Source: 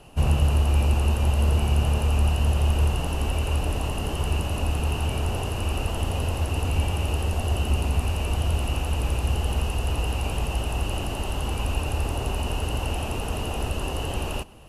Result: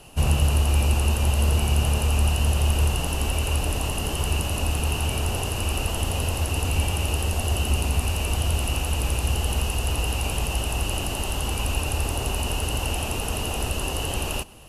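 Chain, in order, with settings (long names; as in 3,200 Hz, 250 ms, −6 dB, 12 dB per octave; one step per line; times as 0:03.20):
high-shelf EQ 3,100 Hz +9.5 dB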